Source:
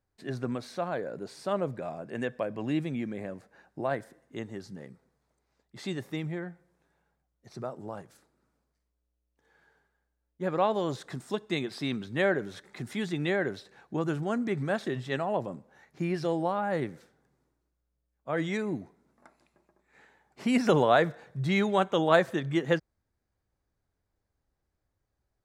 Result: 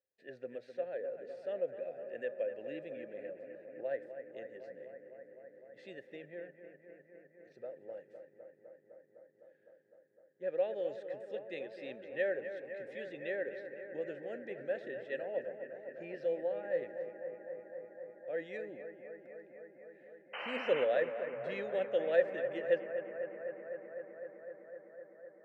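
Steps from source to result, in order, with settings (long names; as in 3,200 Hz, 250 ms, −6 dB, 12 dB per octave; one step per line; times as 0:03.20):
formant filter e
sound drawn into the spectrogram noise, 0:20.33–0:20.85, 510–3,100 Hz −42 dBFS
bucket-brigade delay 254 ms, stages 4,096, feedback 83%, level −10 dB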